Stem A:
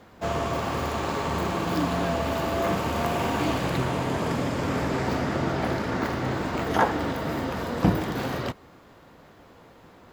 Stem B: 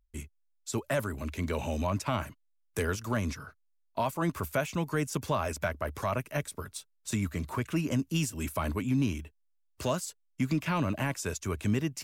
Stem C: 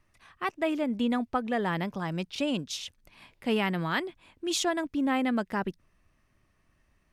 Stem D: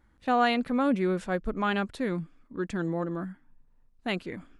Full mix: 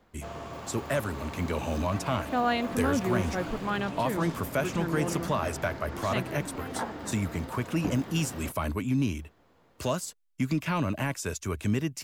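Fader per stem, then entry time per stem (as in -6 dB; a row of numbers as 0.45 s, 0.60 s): -12.5 dB, +1.0 dB, -16.0 dB, -3.0 dB; 0.00 s, 0.00 s, 1.50 s, 2.05 s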